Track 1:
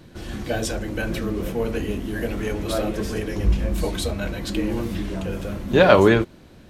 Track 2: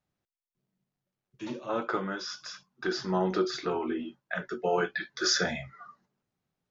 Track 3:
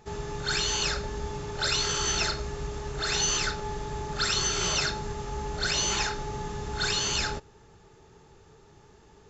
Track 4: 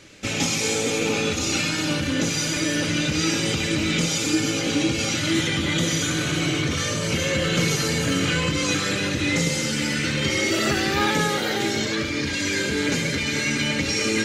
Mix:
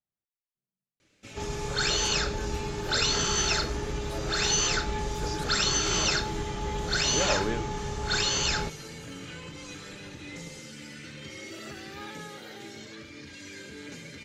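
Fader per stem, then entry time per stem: -16.0, -15.0, +1.0, -19.5 dB; 1.40, 0.00, 1.30, 1.00 s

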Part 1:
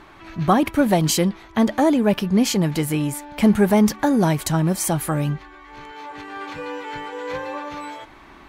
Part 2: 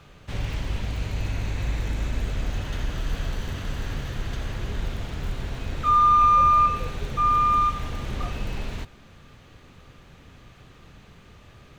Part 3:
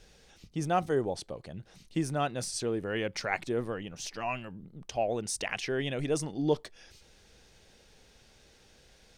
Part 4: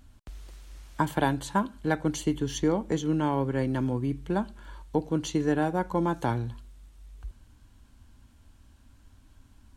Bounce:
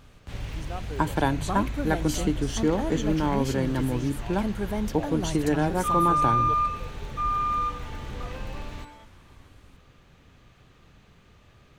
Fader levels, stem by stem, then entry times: -14.5, -6.0, -10.5, +1.0 dB; 1.00, 0.00, 0.00, 0.00 s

